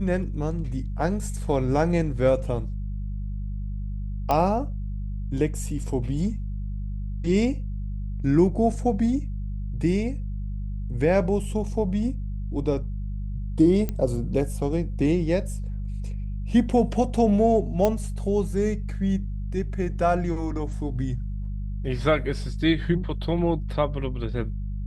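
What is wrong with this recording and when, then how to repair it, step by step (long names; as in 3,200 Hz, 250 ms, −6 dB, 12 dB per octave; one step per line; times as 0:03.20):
mains hum 50 Hz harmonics 4 −30 dBFS
0:04.31: click −11 dBFS
0:13.89: click −15 dBFS
0:17.85: click −9 dBFS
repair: click removal
hum removal 50 Hz, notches 4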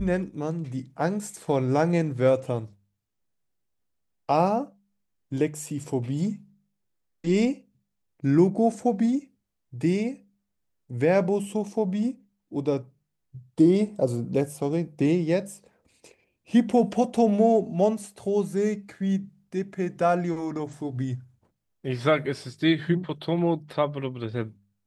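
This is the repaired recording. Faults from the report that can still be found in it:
none of them is left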